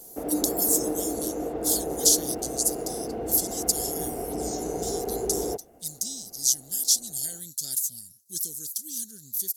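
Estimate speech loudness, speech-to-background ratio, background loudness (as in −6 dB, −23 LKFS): −26.5 LKFS, 5.5 dB, −32.0 LKFS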